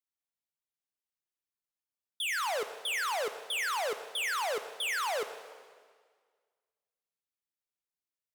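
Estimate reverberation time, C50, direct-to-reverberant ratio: 1.7 s, 10.5 dB, 9.0 dB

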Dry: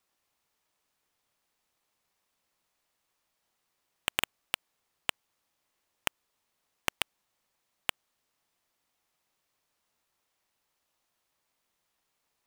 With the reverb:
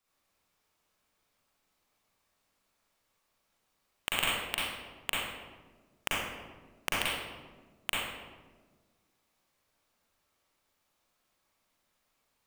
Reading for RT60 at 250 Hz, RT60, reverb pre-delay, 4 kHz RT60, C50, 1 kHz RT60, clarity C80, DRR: 2.0 s, 1.4 s, 39 ms, 0.80 s, -4.0 dB, 1.2 s, 1.0 dB, -7.5 dB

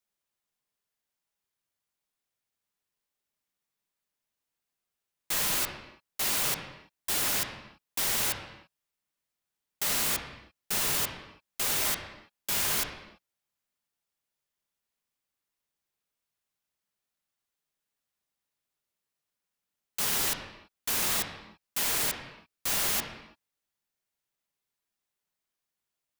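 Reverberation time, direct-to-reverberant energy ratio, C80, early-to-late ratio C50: not exponential, 3.0 dB, 8.0 dB, 6.0 dB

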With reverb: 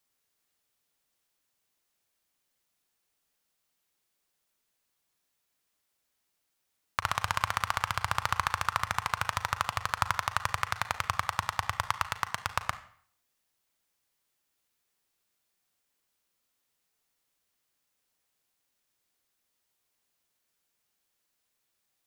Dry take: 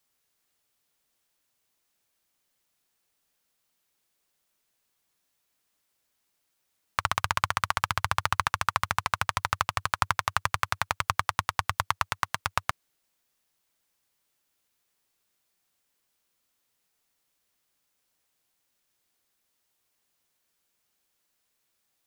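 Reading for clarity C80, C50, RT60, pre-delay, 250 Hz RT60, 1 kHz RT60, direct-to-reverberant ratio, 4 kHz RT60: 17.0 dB, 14.0 dB, 0.55 s, 35 ms, 0.55 s, 0.55 s, 11.0 dB, 0.50 s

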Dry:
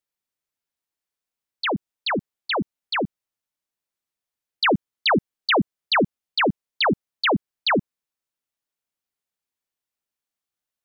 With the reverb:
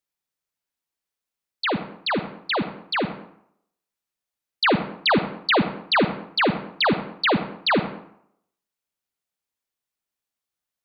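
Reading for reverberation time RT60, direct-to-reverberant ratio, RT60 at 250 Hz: 0.70 s, 9.0 dB, 0.65 s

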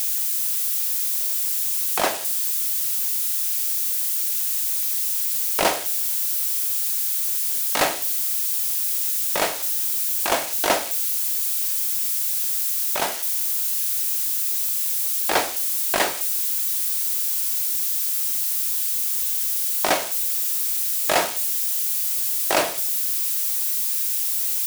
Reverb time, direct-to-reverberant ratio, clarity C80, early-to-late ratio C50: 0.60 s, 10.5 dB, 22.5 dB, 18.5 dB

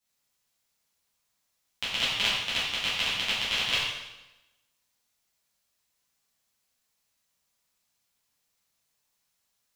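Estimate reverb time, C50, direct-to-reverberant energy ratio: 1.0 s, 0.0 dB, -10.5 dB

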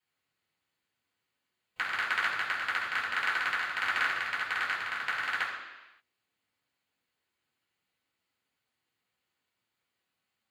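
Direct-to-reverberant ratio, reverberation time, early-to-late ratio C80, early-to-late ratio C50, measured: -7.0 dB, 1.1 s, 5.5 dB, 4.0 dB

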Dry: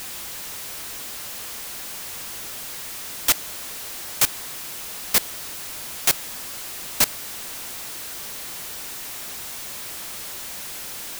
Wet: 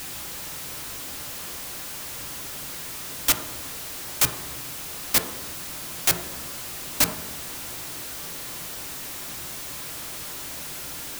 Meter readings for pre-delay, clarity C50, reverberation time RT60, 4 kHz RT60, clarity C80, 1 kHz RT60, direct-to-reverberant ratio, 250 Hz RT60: 3 ms, 9.0 dB, 1.2 s, 0.80 s, 12.0 dB, 1.0 s, 5.0 dB, 1.5 s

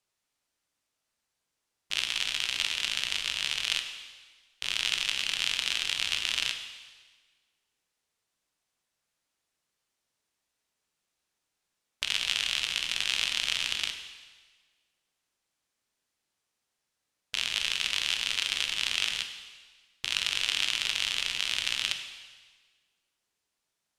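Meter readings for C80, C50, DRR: 9.5 dB, 8.0 dB, 5.5 dB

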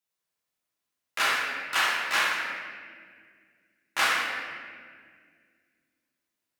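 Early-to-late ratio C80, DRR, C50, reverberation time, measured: 1.0 dB, -7.5 dB, -1.0 dB, 1.9 s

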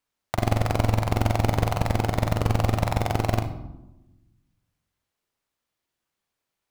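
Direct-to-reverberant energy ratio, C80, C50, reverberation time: 6.0 dB, 13.0 dB, 9.5 dB, 1.0 s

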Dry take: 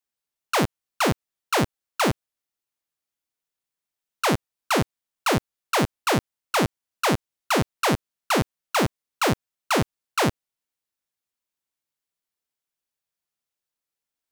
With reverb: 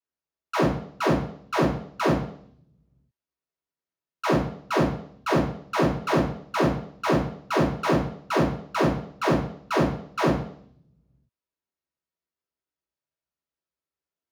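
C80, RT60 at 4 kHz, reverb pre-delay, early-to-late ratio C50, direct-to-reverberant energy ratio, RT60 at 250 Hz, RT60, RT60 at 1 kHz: 10.5 dB, 0.65 s, 3 ms, 6.5 dB, -7.5 dB, 0.80 s, 0.60 s, 0.60 s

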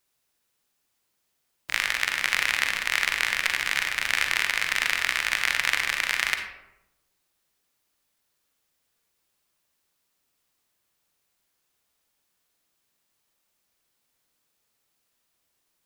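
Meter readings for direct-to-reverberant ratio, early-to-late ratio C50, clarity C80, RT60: 5.0 dB, 6.0 dB, 8.5 dB, 0.90 s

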